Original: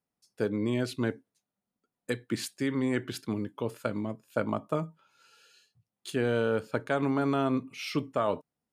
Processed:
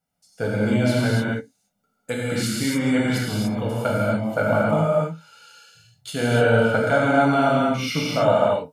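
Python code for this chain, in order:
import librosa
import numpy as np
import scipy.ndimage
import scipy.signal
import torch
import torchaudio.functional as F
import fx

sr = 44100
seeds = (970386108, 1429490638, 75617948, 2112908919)

y = x + 0.66 * np.pad(x, (int(1.4 * sr / 1000.0), 0))[:len(x)]
y = fx.rev_gated(y, sr, seeds[0], gate_ms=320, shape='flat', drr_db=-6.0)
y = F.gain(torch.from_numpy(y), 3.0).numpy()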